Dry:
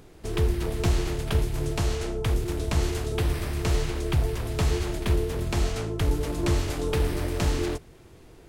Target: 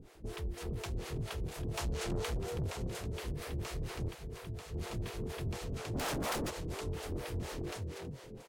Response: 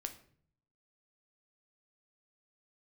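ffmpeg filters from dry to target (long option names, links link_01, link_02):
-filter_complex "[0:a]alimiter=limit=-24dB:level=0:latency=1:release=434,asettb=1/sr,asplit=3[link_01][link_02][link_03];[link_01]atrim=end=1.744[link_04];[link_02]atrim=start=1.74:end=2.38,asetpts=PTS-STARTPTS,afade=type=in:duration=0.004:curve=qsin,afade=type=out:start_time=0.636:duration=0.004:curve=qsin,acontrast=67[link_05];[link_03]atrim=start=2.376[link_06];[link_04][link_05]acrossfade=duration=0.004:curve1=hsin:curve2=qsin[link_07];[link_07][link_06]acrossfade=duration=0.004:curve1=qsin:curve2=hsin,asplit=6[link_08][link_09][link_10][link_11][link_12][link_13];[link_09]adelay=325,afreqshift=40,volume=-3.5dB[link_14];[link_10]adelay=650,afreqshift=80,volume=-11.5dB[link_15];[link_11]adelay=975,afreqshift=120,volume=-19.4dB[link_16];[link_12]adelay=1300,afreqshift=160,volume=-27.4dB[link_17];[link_13]adelay=1625,afreqshift=200,volume=-35.3dB[link_18];[link_08][link_14][link_15][link_16][link_17][link_18]amix=inputs=6:normalize=0,asettb=1/sr,asplit=3[link_19][link_20][link_21];[link_19]atrim=end=4.084[link_22];[link_20]atrim=start=4.08:end=4.74,asetpts=PTS-STARTPTS,afade=type=in:duration=0.004:curve=qsin,afade=type=out:start_time=0.656:duration=0.004:curve=qsin,acrossover=split=530|6100[link_23][link_24][link_25];[link_23]acompressor=threshold=-36dB:ratio=4[link_26];[link_24]acompressor=threshold=-46dB:ratio=4[link_27];[link_25]acompressor=threshold=-56dB:ratio=4[link_28];[link_26][link_27][link_28]amix=inputs=3:normalize=0[link_29];[link_21]atrim=start=4.736[link_30];[link_22][link_29]acrossfade=duration=0.004:curve1=hsin:curve2=qsin[link_31];[link_31][link_30]acrossfade=duration=0.004:curve1=qsin:curve2=hsin,asplit=3[link_32][link_33][link_34];[link_32]afade=type=out:start_time=5.93:duration=0.02[link_35];[link_33]aeval=exprs='0.0708*sin(PI/2*4.47*val(0)/0.0708)':channel_layout=same,afade=type=in:start_time=5.93:duration=0.02,afade=type=out:start_time=6.49:duration=0.02[link_36];[link_34]afade=type=in:start_time=6.49:duration=0.02[link_37];[link_35][link_36][link_37]amix=inputs=3:normalize=0,acrossover=split=460[link_38][link_39];[link_38]aeval=exprs='val(0)*(1-1/2+1/2*cos(2*PI*4.2*n/s))':channel_layout=same[link_40];[link_39]aeval=exprs='val(0)*(1-1/2-1/2*cos(2*PI*4.2*n/s))':channel_layout=same[link_41];[link_40][link_41]amix=inputs=2:normalize=0,asoftclip=type=tanh:threshold=-30dB,volume=-1dB"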